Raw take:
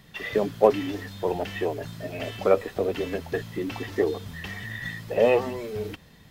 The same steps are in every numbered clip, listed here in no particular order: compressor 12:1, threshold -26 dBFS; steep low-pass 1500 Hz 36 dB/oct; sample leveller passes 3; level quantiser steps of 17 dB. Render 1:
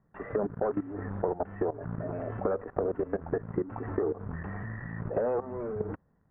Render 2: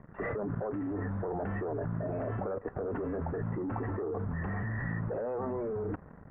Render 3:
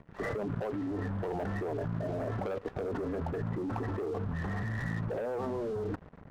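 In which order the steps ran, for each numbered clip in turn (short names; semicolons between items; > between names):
sample leveller > level quantiser > compressor > steep low-pass; compressor > sample leveller > steep low-pass > level quantiser; compressor > steep low-pass > sample leveller > level quantiser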